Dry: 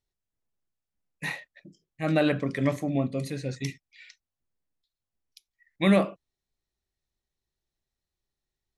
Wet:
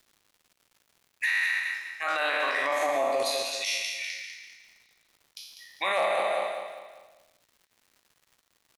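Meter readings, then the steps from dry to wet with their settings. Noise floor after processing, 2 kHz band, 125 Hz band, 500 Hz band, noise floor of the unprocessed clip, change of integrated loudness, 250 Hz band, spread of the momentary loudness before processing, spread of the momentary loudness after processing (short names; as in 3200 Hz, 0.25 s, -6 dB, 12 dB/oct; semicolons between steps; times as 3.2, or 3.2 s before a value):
-73 dBFS, +9.0 dB, under -30 dB, +1.0 dB, under -85 dBFS, 0.0 dB, -20.0 dB, 13 LU, 19 LU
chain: spectral trails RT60 0.96 s; LFO high-pass saw down 0.31 Hz 620–3600 Hz; low shelf 250 Hz -10 dB; notches 50/100/150/200 Hz; on a send: feedback echo 0.198 s, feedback 40%, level -7.5 dB; on the sum: crackle 270/s -55 dBFS; hard clip -13 dBFS, distortion -34 dB; limiter -23.5 dBFS, peak gain reduction 10.5 dB; gain +5.5 dB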